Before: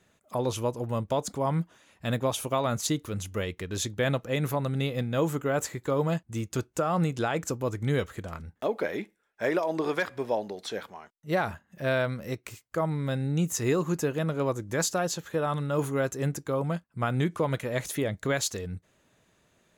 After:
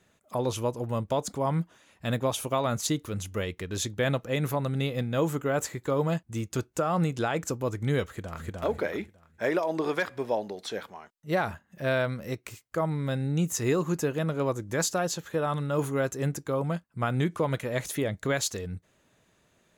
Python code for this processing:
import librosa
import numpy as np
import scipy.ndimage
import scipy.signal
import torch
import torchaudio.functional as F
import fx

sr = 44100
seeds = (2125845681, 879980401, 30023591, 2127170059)

y = fx.echo_throw(x, sr, start_s=8.05, length_s=0.42, ms=300, feedback_pct=30, wet_db=-0.5)